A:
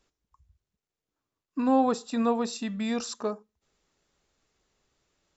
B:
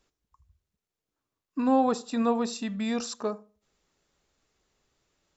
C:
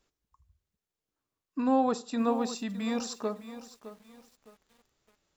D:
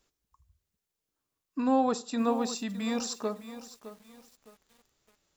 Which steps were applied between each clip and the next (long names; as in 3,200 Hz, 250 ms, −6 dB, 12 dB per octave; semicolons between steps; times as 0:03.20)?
feedback echo with a low-pass in the loop 77 ms, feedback 30%, low-pass 1,300 Hz, level −19 dB
feedback echo at a low word length 611 ms, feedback 35%, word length 8 bits, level −13 dB; level −2.5 dB
high-shelf EQ 4,600 Hz +5.5 dB